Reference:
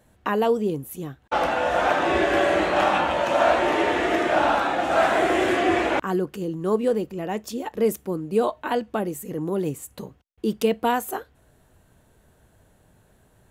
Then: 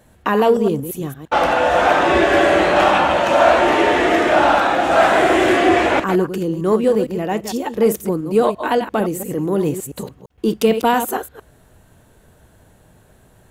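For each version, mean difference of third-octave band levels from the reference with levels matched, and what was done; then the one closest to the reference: 2.0 dB: reverse delay 0.114 s, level -9 dB; in parallel at -9 dB: soft clip -19 dBFS, distortion -12 dB; on the sum: gain +4.5 dB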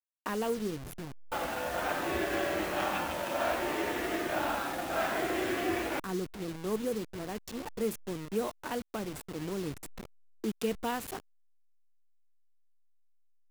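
7.5 dB: level-crossing sampler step -28.5 dBFS; dynamic EQ 710 Hz, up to -5 dB, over -31 dBFS, Q 0.82; gain -8 dB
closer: first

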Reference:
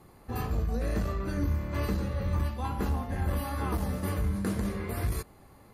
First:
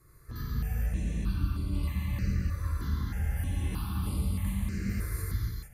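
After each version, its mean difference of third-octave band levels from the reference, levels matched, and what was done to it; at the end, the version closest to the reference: 7.5 dB: bell 590 Hz -15 dB 1.8 oct; in parallel at +0.5 dB: compressor, threshold -38 dBFS, peak gain reduction 12 dB; on the sum: non-linear reverb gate 0.48 s flat, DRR -5.5 dB; step phaser 3.2 Hz 820–6200 Hz; gain -6.5 dB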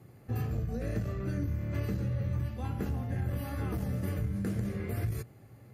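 5.5 dB: HPF 75 Hz; bell 120 Hz +14 dB 0.38 oct; compressor, threshold -27 dBFS, peak gain reduction 6 dB; fifteen-band EQ 1000 Hz -11 dB, 4000 Hz -6 dB, 10000 Hz -6 dB; gain -1 dB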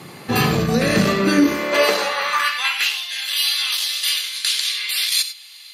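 15.5 dB: weighting filter D; high-pass sweep 140 Hz -> 3500 Hz, 0.98–3.03; non-linear reverb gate 0.12 s rising, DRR 10.5 dB; maximiser +20.5 dB; gain -5 dB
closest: second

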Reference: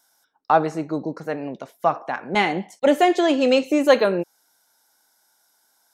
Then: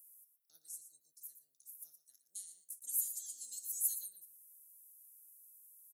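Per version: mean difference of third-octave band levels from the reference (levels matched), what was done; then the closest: 22.5 dB: spectral limiter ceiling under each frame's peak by 15 dB; inverse Chebyshev high-pass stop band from 2700 Hz, stop band 70 dB; echo 0.117 s -11 dB; gain +8 dB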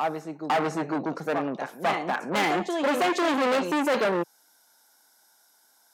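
8.5 dB: on a send: reverse echo 0.499 s -10.5 dB; on the sum: hard clip -20.5 dBFS, distortion -6 dB; HPF 140 Hz 24 dB/oct; core saturation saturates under 1200 Hz; gain +2 dB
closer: second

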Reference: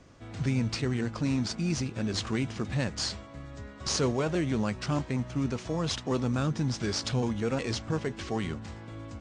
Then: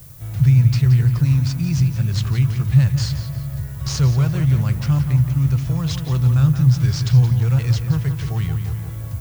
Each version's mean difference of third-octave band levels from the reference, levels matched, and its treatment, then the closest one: 11.5 dB: resonant low shelf 180 Hz +10 dB, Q 3; on a send: darkening echo 0.174 s, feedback 56%, low-pass 3600 Hz, level -7.5 dB; on the sum: dynamic EQ 500 Hz, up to -6 dB, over -37 dBFS, Q 0.91; added noise violet -47 dBFS; gain +2 dB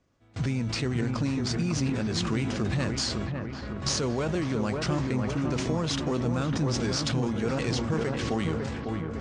4.0 dB: gate with hold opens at -32 dBFS; compressor, threshold -31 dBFS, peak gain reduction 8 dB; on a send: dark delay 0.552 s, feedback 57%, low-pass 1900 Hz, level -5 dB; on the sum: sustainer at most 27 dB/s; gain +5 dB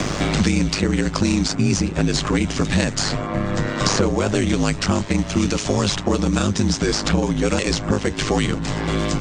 6.5 dB: ring modulator 51 Hz; in parallel at +2.5 dB: limiter -23.5 dBFS, peak gain reduction 7 dB; on the sum: dynamic EQ 7500 Hz, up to +6 dB, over -51 dBFS, Q 1.8; three-band squash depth 100%; gain +6 dB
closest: second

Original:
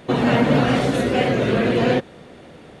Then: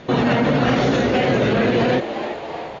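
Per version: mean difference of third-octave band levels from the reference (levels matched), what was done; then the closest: 4.5 dB: Chebyshev low-pass 6800 Hz, order 8; on a send: frequency-shifting echo 0.338 s, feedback 63%, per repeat +99 Hz, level -14 dB; on the sum: maximiser +12.5 dB; gain -8 dB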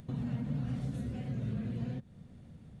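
8.5 dB: compressor 4:1, threshold -23 dBFS, peak gain reduction 9.5 dB; EQ curve 110 Hz 0 dB, 220 Hz -6 dB, 350 Hz -22 dB, 2700 Hz -23 dB, 8500 Hz -15 dB; upward compressor, threshold -46 dBFS; gain -2 dB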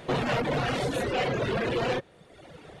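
3.5 dB: soft clip -20 dBFS, distortion -9 dB; bell 240 Hz -7.5 dB 0.61 oct; reverb removal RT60 1.1 s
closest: third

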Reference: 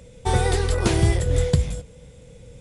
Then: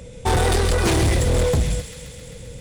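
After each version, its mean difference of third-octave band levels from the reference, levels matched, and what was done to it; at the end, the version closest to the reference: 7.0 dB: hard clip -22.5 dBFS, distortion -6 dB; on a send: thin delay 0.132 s, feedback 78%, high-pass 2400 Hz, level -8 dB; on the sum: gain +7 dB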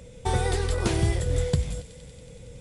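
2.5 dB: in parallel at +3 dB: compressor, threshold -28 dBFS, peak gain reduction 14.5 dB; on the sum: thin delay 93 ms, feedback 84%, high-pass 2700 Hz, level -15 dB; gain -7.5 dB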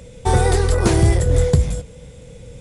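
1.5 dB: dynamic EQ 3000 Hz, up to -6 dB, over -46 dBFS, Q 1.1; soft clip -10.5 dBFS, distortion -20 dB; gain +6 dB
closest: third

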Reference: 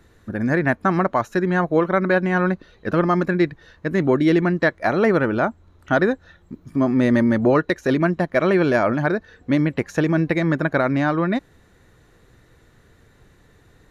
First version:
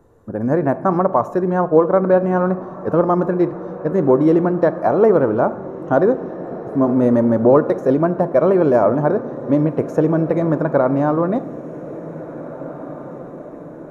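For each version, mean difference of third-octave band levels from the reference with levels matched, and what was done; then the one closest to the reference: 7.0 dB: ten-band EQ 125 Hz +4 dB, 250 Hz +3 dB, 500 Hz +10 dB, 1000 Hz +9 dB, 2000 Hz -10 dB, 4000 Hz -10 dB; on a send: diffused feedback echo 1.856 s, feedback 56%, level -15.5 dB; on the sum: shoebox room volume 530 m³, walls mixed, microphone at 0.31 m; gain -4.5 dB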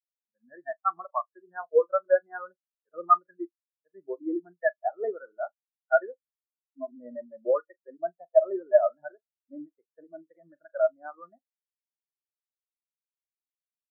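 18.5 dB: three-band isolator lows -16 dB, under 560 Hz, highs -15 dB, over 2000 Hz; flutter echo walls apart 7 m, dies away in 0.24 s; spectral expander 4:1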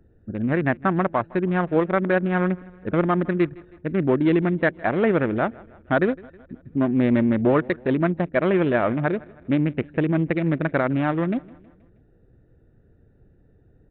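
4.0 dB: Wiener smoothing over 41 samples; on a send: feedback echo 0.159 s, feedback 53%, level -23 dB; on the sum: downsampling 8000 Hz; gain -1.5 dB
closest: third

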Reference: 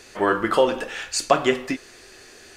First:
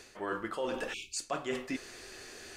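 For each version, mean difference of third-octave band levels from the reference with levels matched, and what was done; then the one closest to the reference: 7.0 dB: spectral delete 0.93–1.17, 430–2200 Hz; dynamic EQ 7700 Hz, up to +5 dB, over -42 dBFS, Q 1.4; reverse; compressor 5:1, threshold -32 dBFS, peak gain reduction 19 dB; reverse; gain -2 dB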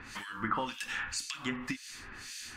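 10.0 dB: band shelf 500 Hz -16 dB 1.3 oct; compressor 6:1, threshold -34 dBFS, peak gain reduction 15.5 dB; harmonic tremolo 1.9 Hz, depth 100%, crossover 2100 Hz; gain +7 dB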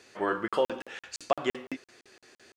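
3.0 dB: HPF 110 Hz 12 dB/oct; high shelf 8400 Hz -9.5 dB; crackling interface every 0.17 s, samples 2048, zero, from 0.48; gain -8.5 dB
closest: third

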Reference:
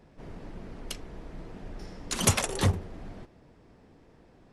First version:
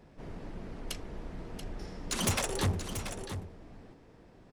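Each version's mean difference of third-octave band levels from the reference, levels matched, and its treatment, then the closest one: 5.5 dB: soft clip -24 dBFS, distortion -8 dB; echo 0.683 s -9.5 dB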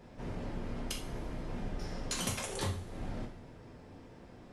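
9.0 dB: compressor 16:1, threshold -37 dBFS, peak gain reduction 20 dB; two-slope reverb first 0.41 s, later 1.7 s, from -18 dB, DRR -0.5 dB; gain +1.5 dB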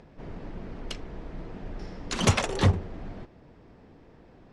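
1.5 dB: upward compressor, threshold -53 dBFS; air absorption 95 m; gain +3.5 dB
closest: third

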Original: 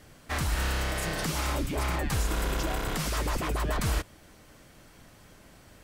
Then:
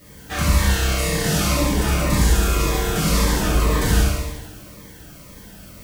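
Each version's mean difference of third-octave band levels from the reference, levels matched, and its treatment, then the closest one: 4.5 dB: added noise violet -60 dBFS; on a send: flutter echo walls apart 12 m, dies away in 0.96 s; on the sum: two-slope reverb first 0.9 s, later 2.4 s, DRR -7 dB; cascading phaser falling 1.9 Hz; gain +2 dB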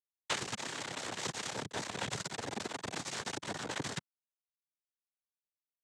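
13.0 dB: compressor 8:1, threshold -40 dBFS, peak gain reduction 16.5 dB; small resonant body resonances 500/1800 Hz, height 9 dB, ringing for 75 ms; requantised 6-bit, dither none; noise vocoder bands 6; gain +5.5 dB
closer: first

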